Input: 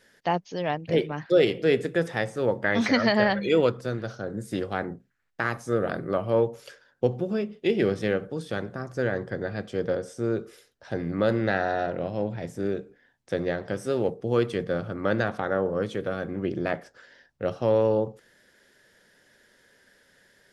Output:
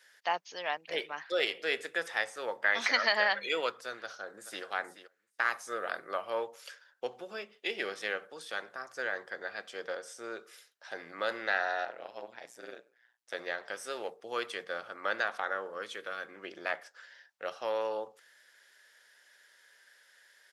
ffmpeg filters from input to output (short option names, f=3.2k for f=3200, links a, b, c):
-filter_complex "[0:a]asplit=2[a][b];[b]afade=t=in:st=3.94:d=0.01,afade=t=out:st=4.64:d=0.01,aecho=0:1:430|860:0.237137|0.0237137[c];[a][c]amix=inputs=2:normalize=0,asettb=1/sr,asplit=3[d][e][f];[d]atrim=end=11.854[g];[e]atrim=start=11.85:end=13.34,asetpts=PTS-STARTPTS,afade=t=in:d=0.004:c=qsin,afade=t=out:st=1.486:d=0.004:c=qsin,tremolo=f=120:d=0.947[h];[f]atrim=start=13.336[i];[g][h]acrossfade=d=0.004:c1=hsin:c2=qsin[j];[j][i]acrossfade=d=0.004:c1=qsin:c2=hsin,asettb=1/sr,asplit=3[k][l][m];[k]atrim=end=15.524[n];[l]atrim=start=15.52:end=16.44,asetpts=PTS-STARTPTS,afade=t=in:d=0.004:c=qsin,afade=t=out:st=0.916:d=0.004:c=qsin,equalizer=f=730:t=o:w=0.77:g=-5.5[o];[m]atrim=start=16.436[p];[n][o]acrossfade=d=0.004:c1=hsin:c2=qsin[q];[q][p]acrossfade=d=0.004:c1=qsin:c2=hsin,highpass=1k"